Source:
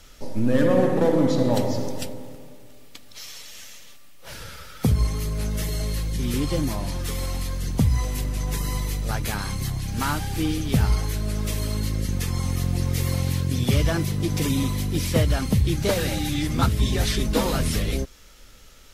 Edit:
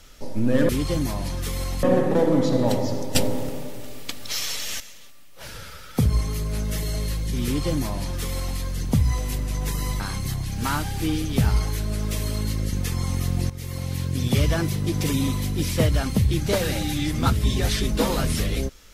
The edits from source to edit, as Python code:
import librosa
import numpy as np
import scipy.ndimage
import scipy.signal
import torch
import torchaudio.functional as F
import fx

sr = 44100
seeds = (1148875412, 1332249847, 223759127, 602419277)

y = fx.edit(x, sr, fx.clip_gain(start_s=2.01, length_s=1.65, db=11.5),
    fx.duplicate(start_s=6.31, length_s=1.14, to_s=0.69),
    fx.cut(start_s=8.86, length_s=0.5),
    fx.fade_in_from(start_s=12.86, length_s=0.78, floor_db=-13.5), tone=tone)